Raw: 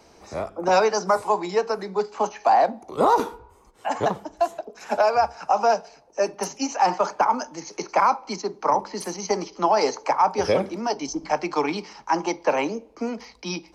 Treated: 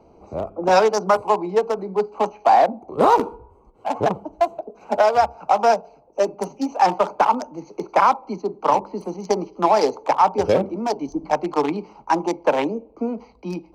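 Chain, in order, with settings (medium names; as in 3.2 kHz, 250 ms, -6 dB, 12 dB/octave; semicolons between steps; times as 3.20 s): local Wiener filter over 25 samples; trim +4 dB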